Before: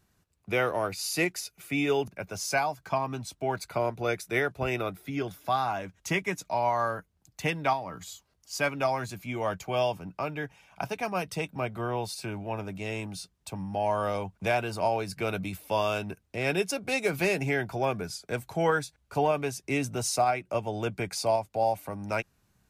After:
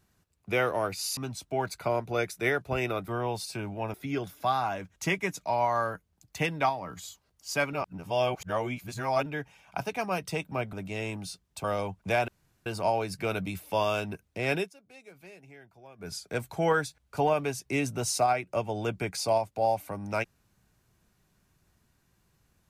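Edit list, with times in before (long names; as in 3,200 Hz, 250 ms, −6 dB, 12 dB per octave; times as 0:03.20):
0:01.17–0:03.07: remove
0:08.77–0:10.30: reverse
0:11.77–0:12.63: move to 0:04.98
0:13.54–0:14.00: remove
0:14.64: splice in room tone 0.38 s
0:16.54–0:18.10: duck −23.5 dB, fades 0.14 s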